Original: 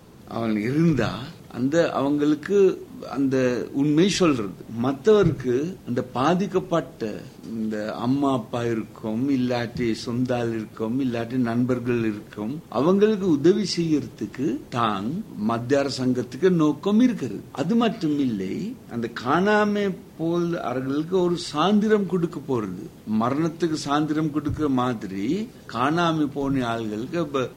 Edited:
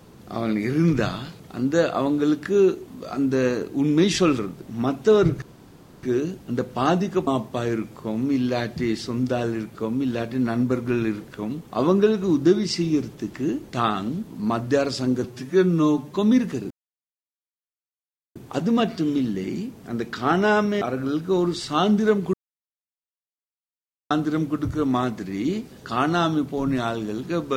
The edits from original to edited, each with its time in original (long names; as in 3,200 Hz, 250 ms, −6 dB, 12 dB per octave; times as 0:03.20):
0:05.42: splice in room tone 0.61 s
0:06.66–0:08.26: remove
0:16.23–0:16.84: time-stretch 1.5×
0:17.39: splice in silence 1.65 s
0:19.85–0:20.65: remove
0:22.17–0:23.94: silence